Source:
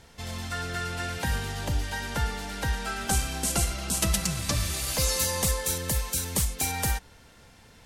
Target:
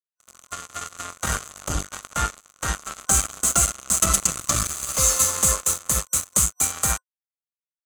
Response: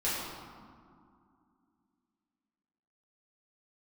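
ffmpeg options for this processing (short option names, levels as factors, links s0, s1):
-af "acrusher=bits=3:mix=0:aa=0.5,superequalizer=8b=1.41:10b=3.16:15b=3.98:16b=2"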